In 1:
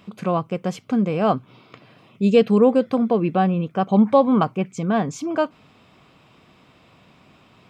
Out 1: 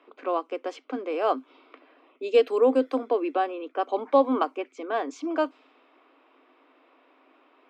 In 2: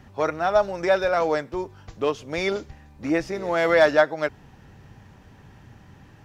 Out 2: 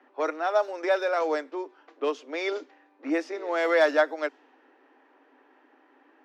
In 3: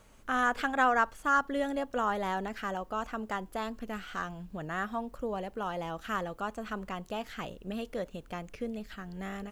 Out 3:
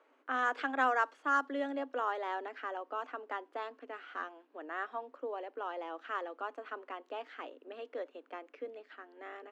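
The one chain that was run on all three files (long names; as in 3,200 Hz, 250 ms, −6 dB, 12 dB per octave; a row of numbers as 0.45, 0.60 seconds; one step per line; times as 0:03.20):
Chebyshev high-pass filter 260 Hz, order 8
low-pass that shuts in the quiet parts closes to 2,100 Hz, open at −17 dBFS
level −3.5 dB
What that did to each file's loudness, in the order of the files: −6.5, −4.0, −4.0 LU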